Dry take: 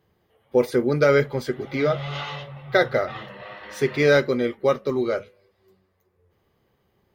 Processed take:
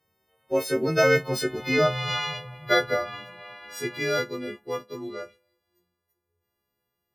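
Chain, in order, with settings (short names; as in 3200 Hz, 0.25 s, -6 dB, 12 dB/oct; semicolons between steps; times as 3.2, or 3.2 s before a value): frequency quantiser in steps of 3 st; Doppler pass-by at 1.75, 15 m/s, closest 12 m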